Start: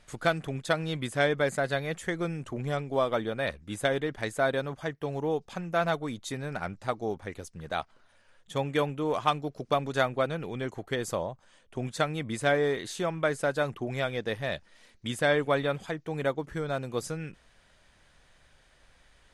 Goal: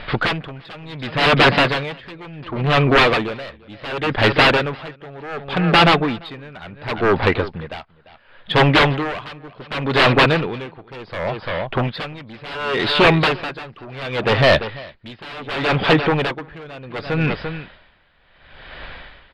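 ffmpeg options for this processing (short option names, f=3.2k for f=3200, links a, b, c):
-filter_complex "[0:a]aresample=11025,aeval=exprs='0.282*sin(PI/2*7.94*val(0)/0.282)':c=same,aresample=44100,lowpass=f=3.7k:w=0.5412,lowpass=f=3.7k:w=1.3066,aecho=1:1:344:0.224,asplit=2[a][b];[b]asoftclip=type=tanh:threshold=-17dB,volume=-5.5dB[c];[a][c]amix=inputs=2:normalize=0,lowshelf=f=420:g=-5,aeval=exprs='val(0)*pow(10,-24*(0.5-0.5*cos(2*PI*0.69*n/s))/20)':c=same,volume=3dB"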